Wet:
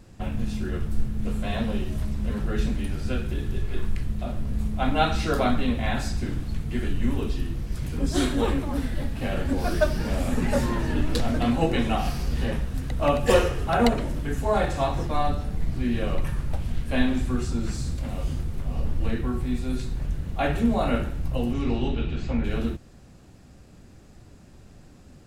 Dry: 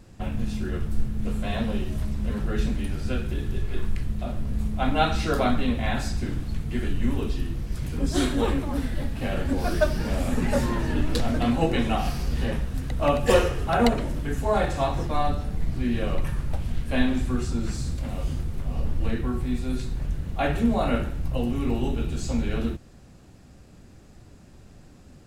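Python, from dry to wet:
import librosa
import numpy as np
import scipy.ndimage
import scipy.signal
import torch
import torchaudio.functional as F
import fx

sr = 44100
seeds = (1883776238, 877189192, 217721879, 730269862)

y = fx.lowpass_res(x, sr, hz=fx.line((21.53, 6200.0), (22.43, 2000.0)), q=1.6, at=(21.53, 22.43), fade=0.02)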